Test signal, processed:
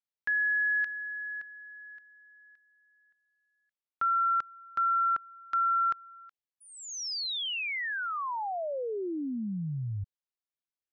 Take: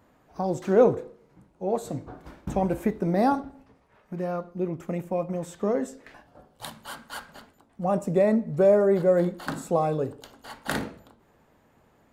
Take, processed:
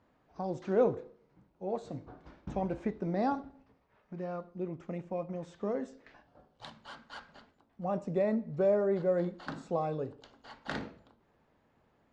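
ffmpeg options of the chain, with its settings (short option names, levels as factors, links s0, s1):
-af "lowpass=f=5700:w=0.5412,lowpass=f=5700:w=1.3066,volume=0.376"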